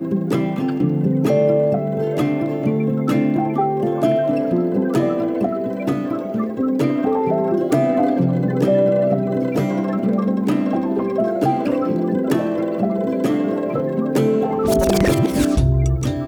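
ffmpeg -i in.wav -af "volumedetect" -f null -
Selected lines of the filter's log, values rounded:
mean_volume: -18.2 dB
max_volume: -4.9 dB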